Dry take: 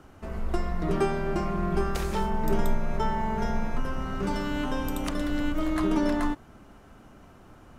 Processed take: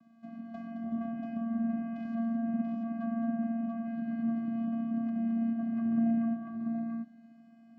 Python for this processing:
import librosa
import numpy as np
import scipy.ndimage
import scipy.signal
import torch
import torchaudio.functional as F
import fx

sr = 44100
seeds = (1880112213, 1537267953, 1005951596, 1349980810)

y = fx.vocoder(x, sr, bands=8, carrier='square', carrier_hz=229.0)
y = fx.env_lowpass_down(y, sr, base_hz=1500.0, full_db=-29.5)
y = fx.echo_multitap(y, sr, ms=(91, 217, 686), db=(-16.5, -8.0, -4.0))
y = y * 10.0 ** (-5.0 / 20.0)